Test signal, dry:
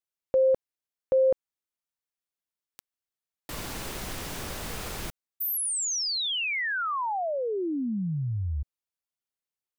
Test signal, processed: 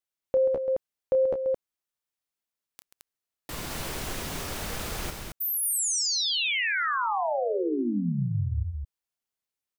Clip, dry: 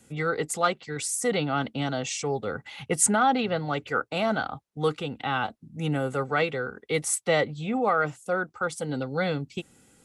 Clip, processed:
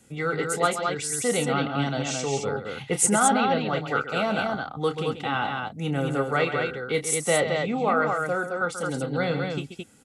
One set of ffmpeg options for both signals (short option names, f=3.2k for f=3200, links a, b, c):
-af "aecho=1:1:29.15|134.1|218.7:0.316|0.316|0.631"